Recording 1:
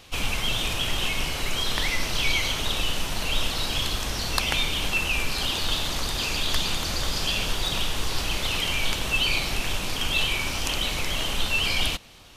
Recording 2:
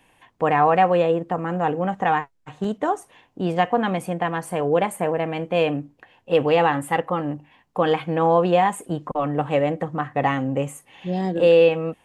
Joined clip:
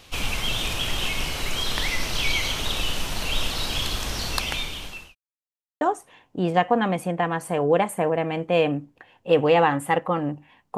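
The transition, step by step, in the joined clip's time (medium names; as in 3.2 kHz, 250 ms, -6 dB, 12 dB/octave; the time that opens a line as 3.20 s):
recording 1
4.25–5.15 s: fade out linear
5.15–5.81 s: mute
5.81 s: go over to recording 2 from 2.83 s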